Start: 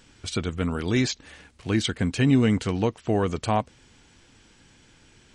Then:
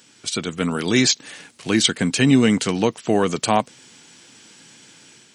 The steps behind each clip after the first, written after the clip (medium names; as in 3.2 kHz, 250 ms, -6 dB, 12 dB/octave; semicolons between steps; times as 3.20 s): high-pass 140 Hz 24 dB/octave; level rider gain up to 5.5 dB; treble shelf 3.6 kHz +10.5 dB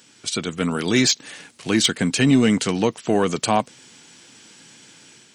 saturation -5 dBFS, distortion -24 dB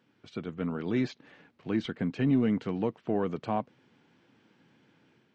tape spacing loss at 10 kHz 45 dB; trim -8 dB